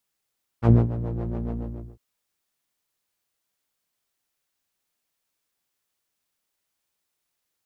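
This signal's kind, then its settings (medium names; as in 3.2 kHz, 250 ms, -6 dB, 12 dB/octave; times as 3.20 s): synth patch with filter wobble A#2, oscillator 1 saw, interval -12 st, oscillator 2 level -1.5 dB, noise -0.5 dB, filter lowpass, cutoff 280 Hz, Q 0.98, filter envelope 2 oct, filter decay 0.07 s, filter sustain 25%, attack 86 ms, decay 0.17 s, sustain -14 dB, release 0.47 s, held 0.89 s, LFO 7.1 Hz, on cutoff 0.7 oct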